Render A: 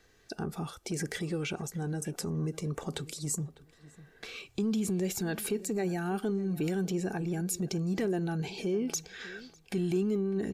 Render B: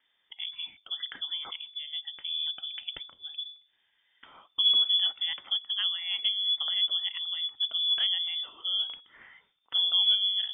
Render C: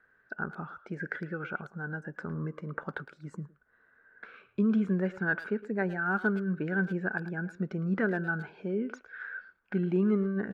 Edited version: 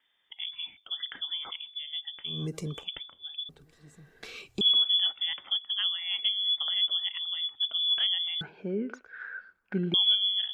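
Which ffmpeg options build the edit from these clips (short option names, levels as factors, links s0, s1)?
-filter_complex "[0:a]asplit=2[s0][s1];[1:a]asplit=4[s2][s3][s4][s5];[s2]atrim=end=2.48[s6];[s0]atrim=start=2.24:end=2.89[s7];[s3]atrim=start=2.65:end=3.492[s8];[s1]atrim=start=3.488:end=4.612[s9];[s4]atrim=start=4.608:end=8.412[s10];[2:a]atrim=start=8.408:end=9.942[s11];[s5]atrim=start=9.938[s12];[s6][s7]acrossfade=d=0.24:c1=tri:c2=tri[s13];[s13][s8]acrossfade=d=0.24:c1=tri:c2=tri[s14];[s14][s9]acrossfade=d=0.004:c1=hsin:c2=hsin[s15];[s15][s10]acrossfade=d=0.004:c1=hsin:c2=hsin[s16];[s16][s11]acrossfade=d=0.004:c1=hsin:c2=hsin[s17];[s17][s12]acrossfade=d=0.004:c1=hsin:c2=hsin"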